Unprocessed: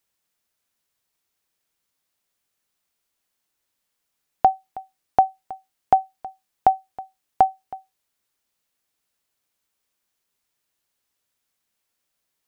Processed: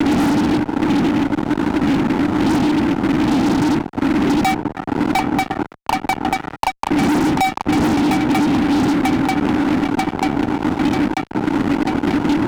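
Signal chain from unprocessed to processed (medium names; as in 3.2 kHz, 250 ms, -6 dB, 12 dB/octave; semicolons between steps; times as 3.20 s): median filter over 41 samples; wind noise 240 Hz -35 dBFS; 4.54–6.90 s: auto-wah 490–1200 Hz, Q 7.1, up, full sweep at -22 dBFS; gate with hold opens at -51 dBFS; level-controlled noise filter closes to 880 Hz, open at -24.5 dBFS; vowel filter u; treble shelf 2.1 kHz -5.5 dB; shuffle delay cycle 940 ms, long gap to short 3:1, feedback 61%, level -13 dB; dynamic bell 550 Hz, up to -7 dB, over -58 dBFS, Q 1.2; fuzz box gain 57 dB, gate -59 dBFS; three bands compressed up and down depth 70%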